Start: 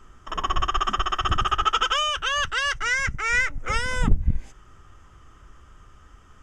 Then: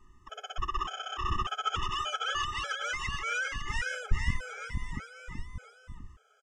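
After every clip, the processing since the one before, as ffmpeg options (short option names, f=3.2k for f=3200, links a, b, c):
-filter_complex "[0:a]asplit=2[a][b];[b]aecho=0:1:470|893|1274|1616|1925:0.631|0.398|0.251|0.158|0.1[c];[a][c]amix=inputs=2:normalize=0,afftfilt=real='re*gt(sin(2*PI*1.7*pts/sr)*(1-2*mod(floor(b*sr/1024/430),2)),0)':imag='im*gt(sin(2*PI*1.7*pts/sr)*(1-2*mod(floor(b*sr/1024/430),2)),0)':win_size=1024:overlap=0.75,volume=-8dB"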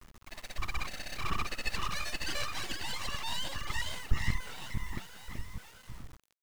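-filter_complex "[0:a]asplit=2[a][b];[b]adelay=191,lowpass=f=2.3k:p=1,volume=-22.5dB,asplit=2[c][d];[d]adelay=191,lowpass=f=2.3k:p=1,volume=0.46,asplit=2[e][f];[f]adelay=191,lowpass=f=2.3k:p=1,volume=0.46[g];[a][c][e][g]amix=inputs=4:normalize=0,aeval=exprs='abs(val(0))':c=same,acrusher=bits=8:mix=0:aa=0.000001"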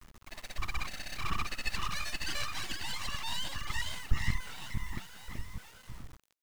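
-af "adynamicequalizer=threshold=0.00112:dfrequency=480:dqfactor=1.4:tfrequency=480:tqfactor=1.4:attack=5:release=100:ratio=0.375:range=3.5:mode=cutabove:tftype=bell"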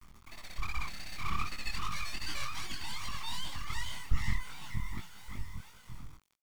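-af "aecho=1:1:0.9:0.37,flanger=delay=19.5:depth=6.7:speed=2.6"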